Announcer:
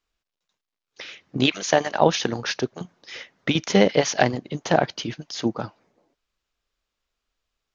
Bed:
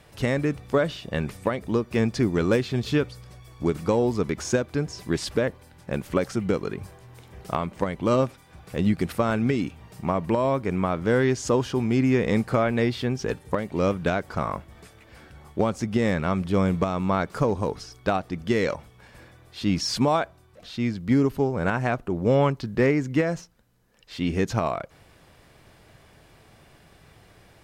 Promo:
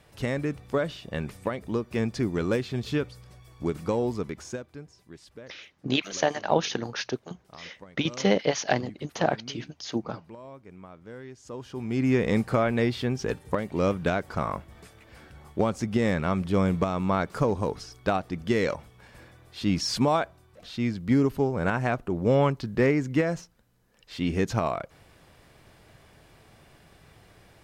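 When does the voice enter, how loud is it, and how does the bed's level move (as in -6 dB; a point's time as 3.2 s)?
4.50 s, -5.5 dB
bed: 4.11 s -4.5 dB
5.07 s -21.5 dB
11.37 s -21.5 dB
12.1 s -1.5 dB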